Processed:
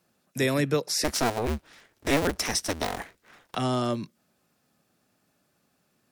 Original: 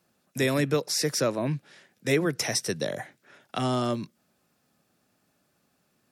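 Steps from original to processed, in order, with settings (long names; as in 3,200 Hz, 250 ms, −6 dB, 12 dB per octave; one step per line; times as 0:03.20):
0:01.04–0:03.55: sub-harmonics by changed cycles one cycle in 2, inverted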